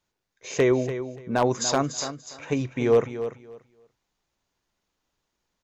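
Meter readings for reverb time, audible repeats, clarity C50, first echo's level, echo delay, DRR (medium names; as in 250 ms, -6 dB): no reverb, 2, no reverb, -11.0 dB, 290 ms, no reverb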